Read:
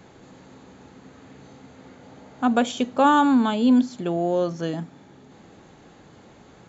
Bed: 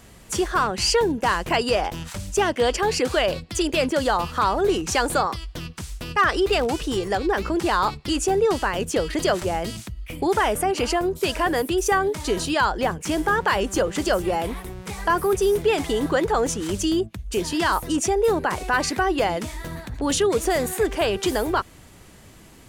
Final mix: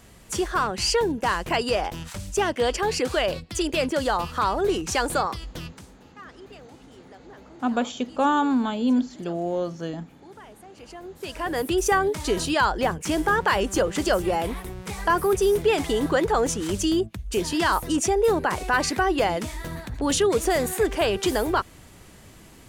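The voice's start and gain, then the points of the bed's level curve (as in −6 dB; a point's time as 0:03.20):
5.20 s, −4.0 dB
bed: 0:05.69 −2.5 dB
0:06.00 −25.5 dB
0:10.69 −25.5 dB
0:11.70 −0.5 dB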